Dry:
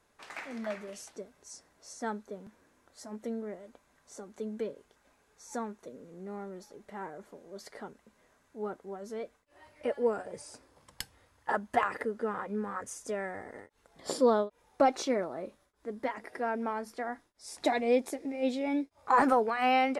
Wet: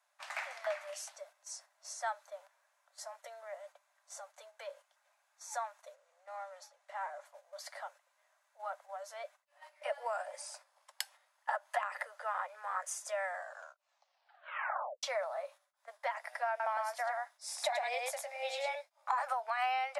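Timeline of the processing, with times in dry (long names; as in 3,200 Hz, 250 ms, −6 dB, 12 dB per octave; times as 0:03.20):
0:05.94–0:07.25: low-pass filter 10,000 Hz
0:13.26: tape stop 1.77 s
0:16.49–0:18.75: single-tap delay 106 ms −3 dB
whole clip: Butterworth high-pass 570 Hz 96 dB per octave; noise gate −57 dBFS, range −8 dB; downward compressor 12 to 1, threshold −33 dBFS; level +2.5 dB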